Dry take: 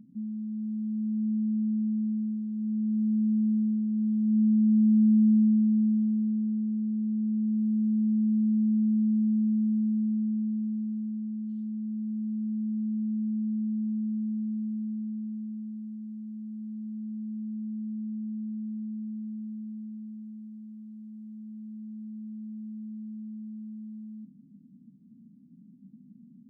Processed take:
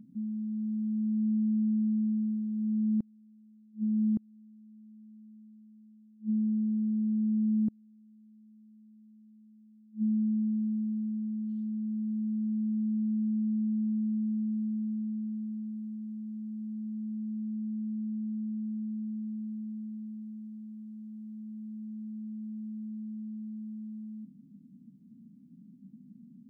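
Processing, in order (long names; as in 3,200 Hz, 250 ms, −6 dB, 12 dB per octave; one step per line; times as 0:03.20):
gate with flip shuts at −23 dBFS, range −32 dB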